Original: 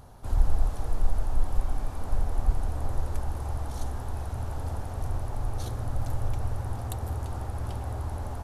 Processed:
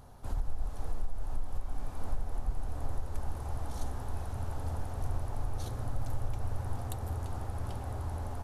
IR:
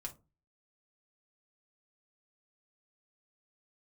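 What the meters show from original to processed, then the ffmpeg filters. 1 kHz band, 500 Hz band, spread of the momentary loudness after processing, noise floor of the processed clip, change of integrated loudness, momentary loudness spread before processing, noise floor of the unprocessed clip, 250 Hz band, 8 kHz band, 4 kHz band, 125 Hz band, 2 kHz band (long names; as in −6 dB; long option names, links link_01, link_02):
−5.0 dB, −5.0 dB, 4 LU, −39 dBFS, −6.0 dB, 5 LU, −36 dBFS, −4.5 dB, −4.5 dB, −4.5 dB, −5.5 dB, −5.0 dB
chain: -filter_complex "[0:a]asplit=2[link_01][link_02];[1:a]atrim=start_sample=2205[link_03];[link_02][link_03]afir=irnorm=-1:irlink=0,volume=-9.5dB[link_04];[link_01][link_04]amix=inputs=2:normalize=0,alimiter=limit=-16.5dB:level=0:latency=1:release=379,volume=-5dB"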